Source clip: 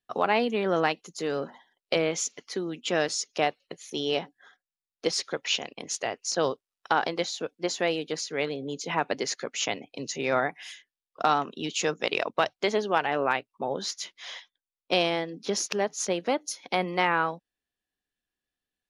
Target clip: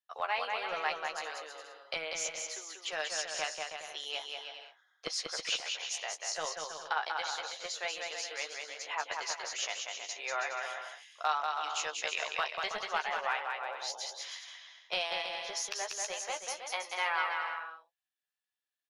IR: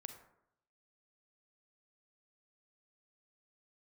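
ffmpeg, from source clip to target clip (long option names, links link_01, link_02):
-filter_complex "[0:a]acrossover=split=650[link_01][link_02];[link_01]acrusher=bits=2:mix=0:aa=0.5[link_03];[link_02]asplit=2[link_04][link_05];[link_05]adelay=13,volume=-6.5dB[link_06];[link_04][link_06]amix=inputs=2:normalize=0[link_07];[link_03][link_07]amix=inputs=2:normalize=0,aecho=1:1:190|323|416.1|481.3|526.9:0.631|0.398|0.251|0.158|0.1,volume=-7dB"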